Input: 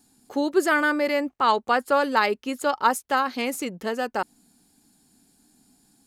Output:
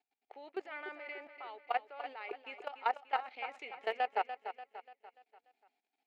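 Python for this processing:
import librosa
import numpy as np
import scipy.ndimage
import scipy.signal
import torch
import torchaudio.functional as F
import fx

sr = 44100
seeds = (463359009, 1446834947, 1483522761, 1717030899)

p1 = fx.law_mismatch(x, sr, coded='A')
p2 = fx.rider(p1, sr, range_db=5, speed_s=0.5)
p3 = fx.cabinet(p2, sr, low_hz=380.0, low_slope=12, high_hz=2400.0, hz=(430.0, 740.0, 1100.0, 1600.0, 2300.0), db=(8, 10, -8, -9, 6))
p4 = fx.level_steps(p3, sr, step_db=18)
p5 = np.diff(p4, prepend=0.0)
p6 = p5 + fx.echo_feedback(p5, sr, ms=292, feedback_pct=46, wet_db=-10, dry=0)
y = F.gain(torch.from_numpy(p6), 8.0).numpy()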